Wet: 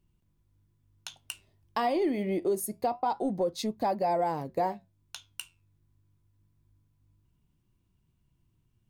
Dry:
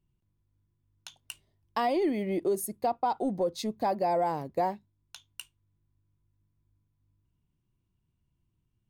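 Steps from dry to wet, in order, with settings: in parallel at +3 dB: compression, threshold -41 dBFS, peak gain reduction 16 dB; on the sum: flange 0.26 Hz, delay 3.3 ms, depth 9.3 ms, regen -78%; trim +2 dB

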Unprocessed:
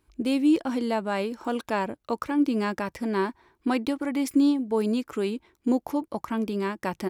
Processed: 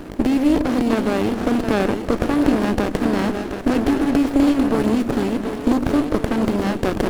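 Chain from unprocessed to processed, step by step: spectral levelling over time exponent 0.4; two-band feedback delay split 320 Hz, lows 115 ms, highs 728 ms, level -7 dB; sliding maximum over 33 samples; trim +2.5 dB

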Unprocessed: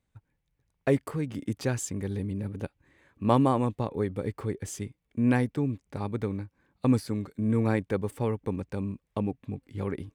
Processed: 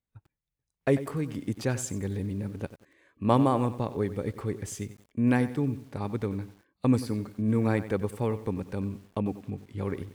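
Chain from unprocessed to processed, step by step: spectral noise reduction 13 dB; bit-crushed delay 93 ms, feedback 35%, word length 8-bit, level -13.5 dB

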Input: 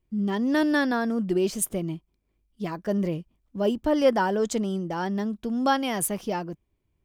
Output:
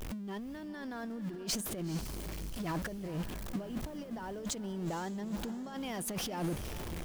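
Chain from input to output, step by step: jump at every zero crossing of -35.5 dBFS; compressor with a negative ratio -33 dBFS, ratio -1; echo that smears into a reverb 470 ms, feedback 45%, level -12.5 dB; trim -6 dB

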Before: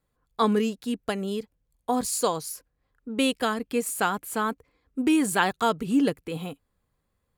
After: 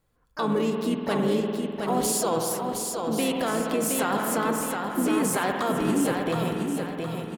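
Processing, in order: in parallel at +2.5 dB: compressor with a negative ratio -28 dBFS, ratio -1; on the sum: dynamic bell 540 Hz, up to +4 dB, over -32 dBFS, Q 0.96; harmony voices -5 st -10 dB, +5 st -11 dB; spring tank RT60 2.3 s, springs 49 ms, chirp 75 ms, DRR 6.5 dB; peak limiter -11 dBFS, peak gain reduction 7 dB; on a send: feedback delay 717 ms, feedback 41%, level -5 dB; on the sum: trim -5.5 dB

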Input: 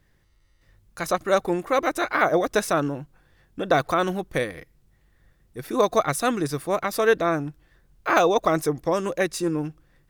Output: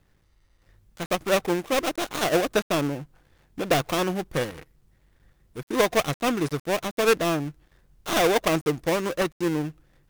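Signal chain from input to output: dead-time distortion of 0.29 ms

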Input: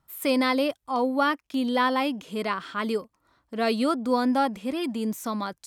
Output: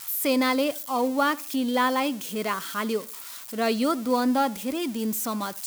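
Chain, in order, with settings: zero-crossing glitches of -27.5 dBFS; tape echo 76 ms, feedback 35%, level -20.5 dB

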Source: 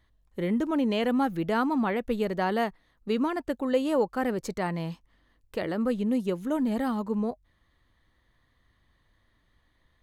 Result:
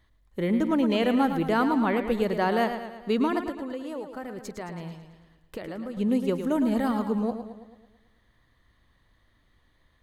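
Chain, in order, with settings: 3.41–5.97 s: compression, threshold -36 dBFS, peak gain reduction 15.5 dB; modulated delay 110 ms, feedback 54%, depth 54 cents, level -9 dB; trim +2 dB

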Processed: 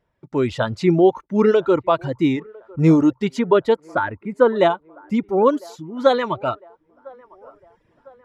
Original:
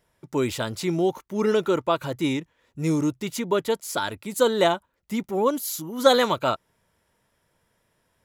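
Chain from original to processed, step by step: reverb removal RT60 1.5 s; 3.75–4.56 s: resonant high shelf 2.6 kHz -12 dB, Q 1.5; level rider gain up to 13 dB; tape spacing loss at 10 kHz 26 dB; feedback echo behind a band-pass 1003 ms, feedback 48%, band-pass 770 Hz, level -23.5 dB

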